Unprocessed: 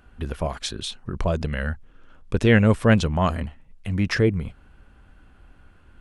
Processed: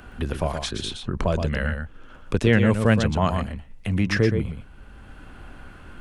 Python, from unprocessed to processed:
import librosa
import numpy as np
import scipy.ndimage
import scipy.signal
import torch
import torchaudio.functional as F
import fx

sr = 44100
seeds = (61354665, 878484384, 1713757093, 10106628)

p1 = x + fx.echo_single(x, sr, ms=120, db=-7.5, dry=0)
y = fx.band_squash(p1, sr, depth_pct=40)